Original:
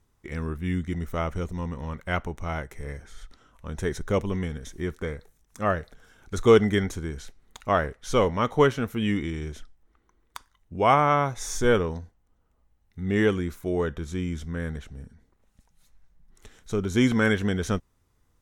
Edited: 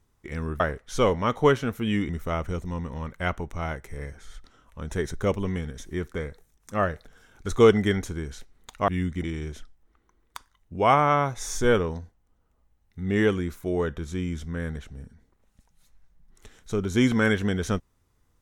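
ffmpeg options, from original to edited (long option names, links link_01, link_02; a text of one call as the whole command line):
ffmpeg -i in.wav -filter_complex "[0:a]asplit=5[link_01][link_02][link_03][link_04][link_05];[link_01]atrim=end=0.602[link_06];[link_02]atrim=start=7.748:end=9.242[link_07];[link_03]atrim=start=0.958:end=7.752[link_08];[link_04]atrim=start=0.598:end=0.962[link_09];[link_05]atrim=start=9.238[link_10];[link_06][link_07]acrossfade=duration=0.004:curve1=hsin:curve2=hsin[link_11];[link_11][link_08]acrossfade=duration=0.004:curve1=hsin:curve2=hsin[link_12];[link_12][link_09]acrossfade=duration=0.004:curve1=hsin:curve2=hsin[link_13];[link_13][link_10]acrossfade=duration=0.004:curve1=hsin:curve2=hsin" out.wav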